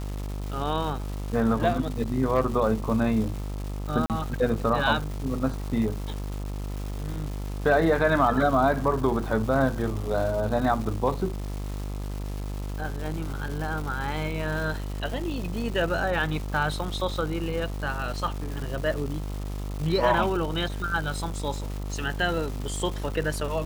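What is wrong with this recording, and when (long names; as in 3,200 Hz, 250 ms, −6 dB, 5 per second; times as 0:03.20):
mains buzz 50 Hz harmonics 27 −32 dBFS
surface crackle 570 per second −34 dBFS
0:04.06–0:04.10: drop-out 38 ms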